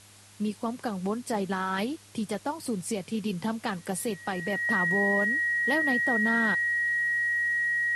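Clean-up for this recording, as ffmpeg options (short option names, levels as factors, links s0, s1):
-af "bandreject=f=101.5:t=h:w=4,bandreject=f=203:t=h:w=4,bandreject=f=304.5:t=h:w=4,bandreject=f=406:t=h:w=4,bandreject=f=1900:w=30,afwtdn=0.0025"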